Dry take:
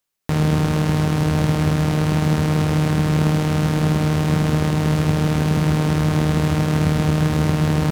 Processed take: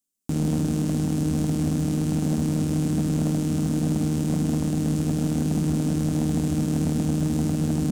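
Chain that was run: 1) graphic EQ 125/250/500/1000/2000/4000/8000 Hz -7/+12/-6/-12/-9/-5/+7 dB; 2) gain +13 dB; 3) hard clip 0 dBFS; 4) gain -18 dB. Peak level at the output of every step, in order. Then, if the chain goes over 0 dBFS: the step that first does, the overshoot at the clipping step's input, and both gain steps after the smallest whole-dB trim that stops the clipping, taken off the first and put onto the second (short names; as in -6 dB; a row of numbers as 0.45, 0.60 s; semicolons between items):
-5.0, +8.0, 0.0, -18.0 dBFS; step 2, 8.0 dB; step 2 +5 dB, step 4 -10 dB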